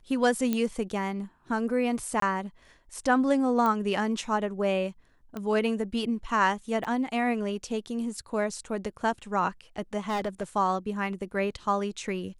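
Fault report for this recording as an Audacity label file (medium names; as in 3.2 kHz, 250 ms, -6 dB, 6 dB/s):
0.530000	0.530000	pop -14 dBFS
2.200000	2.220000	dropout 23 ms
3.660000	3.660000	pop -16 dBFS
5.370000	5.370000	pop -22 dBFS
6.840000	6.850000	dropout 7.7 ms
10.080000	10.440000	clipped -25.5 dBFS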